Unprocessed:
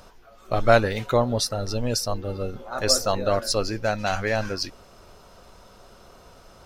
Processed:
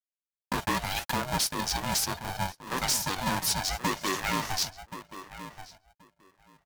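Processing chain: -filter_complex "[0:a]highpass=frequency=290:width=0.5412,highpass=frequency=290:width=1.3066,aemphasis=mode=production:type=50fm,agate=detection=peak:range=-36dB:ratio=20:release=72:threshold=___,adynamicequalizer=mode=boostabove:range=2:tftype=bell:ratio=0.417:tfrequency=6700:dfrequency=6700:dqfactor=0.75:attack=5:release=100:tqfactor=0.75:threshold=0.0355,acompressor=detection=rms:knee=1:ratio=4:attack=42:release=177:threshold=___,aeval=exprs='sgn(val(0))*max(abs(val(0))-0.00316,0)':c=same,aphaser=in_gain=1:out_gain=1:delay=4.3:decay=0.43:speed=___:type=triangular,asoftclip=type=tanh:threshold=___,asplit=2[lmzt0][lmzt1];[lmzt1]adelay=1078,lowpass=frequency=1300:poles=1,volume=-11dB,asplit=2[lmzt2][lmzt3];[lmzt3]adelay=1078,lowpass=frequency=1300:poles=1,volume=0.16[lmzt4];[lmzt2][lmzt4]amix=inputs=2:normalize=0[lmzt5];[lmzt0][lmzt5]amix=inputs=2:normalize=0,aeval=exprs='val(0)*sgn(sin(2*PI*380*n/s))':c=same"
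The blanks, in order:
-41dB, -24dB, 0.73, -22dB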